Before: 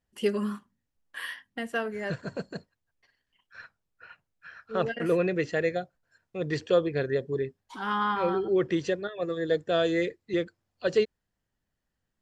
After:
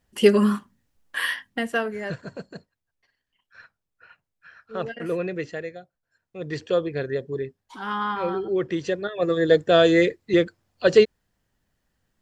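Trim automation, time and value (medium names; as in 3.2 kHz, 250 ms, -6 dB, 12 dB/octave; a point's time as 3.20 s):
1.34 s +11 dB
2.35 s -2 dB
5.47 s -2 dB
5.77 s -10 dB
6.63 s +0.5 dB
8.78 s +0.5 dB
9.31 s +9 dB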